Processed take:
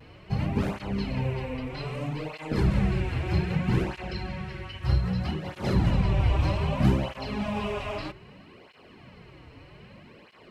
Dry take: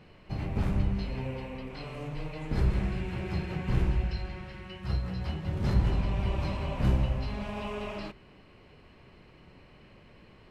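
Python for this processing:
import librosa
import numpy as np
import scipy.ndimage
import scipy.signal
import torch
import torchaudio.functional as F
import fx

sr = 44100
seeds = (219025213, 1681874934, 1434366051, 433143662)

y = fx.vibrato(x, sr, rate_hz=0.47, depth_cents=20.0)
y = fx.flanger_cancel(y, sr, hz=0.63, depth_ms=5.6)
y = y * 10.0 ** (8.5 / 20.0)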